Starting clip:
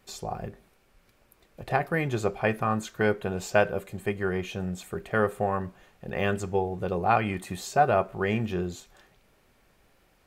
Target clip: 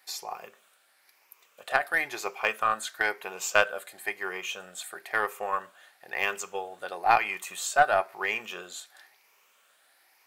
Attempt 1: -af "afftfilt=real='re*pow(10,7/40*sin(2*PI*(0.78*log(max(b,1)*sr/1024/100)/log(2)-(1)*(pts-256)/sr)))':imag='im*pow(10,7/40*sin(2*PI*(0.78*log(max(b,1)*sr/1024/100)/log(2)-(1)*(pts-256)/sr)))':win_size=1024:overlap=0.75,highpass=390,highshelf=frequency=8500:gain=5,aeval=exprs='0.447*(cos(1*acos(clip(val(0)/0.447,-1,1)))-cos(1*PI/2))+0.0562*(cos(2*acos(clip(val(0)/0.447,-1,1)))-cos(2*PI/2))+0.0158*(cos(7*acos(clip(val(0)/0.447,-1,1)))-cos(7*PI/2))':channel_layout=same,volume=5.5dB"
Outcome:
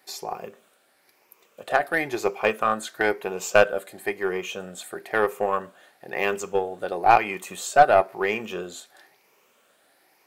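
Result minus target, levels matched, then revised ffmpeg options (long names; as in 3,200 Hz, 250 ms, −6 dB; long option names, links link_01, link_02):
500 Hz band +4.5 dB
-af "afftfilt=real='re*pow(10,7/40*sin(2*PI*(0.78*log(max(b,1)*sr/1024/100)/log(2)-(1)*(pts-256)/sr)))':imag='im*pow(10,7/40*sin(2*PI*(0.78*log(max(b,1)*sr/1024/100)/log(2)-(1)*(pts-256)/sr)))':win_size=1024:overlap=0.75,highpass=960,highshelf=frequency=8500:gain=5,aeval=exprs='0.447*(cos(1*acos(clip(val(0)/0.447,-1,1)))-cos(1*PI/2))+0.0562*(cos(2*acos(clip(val(0)/0.447,-1,1)))-cos(2*PI/2))+0.0158*(cos(7*acos(clip(val(0)/0.447,-1,1)))-cos(7*PI/2))':channel_layout=same,volume=5.5dB"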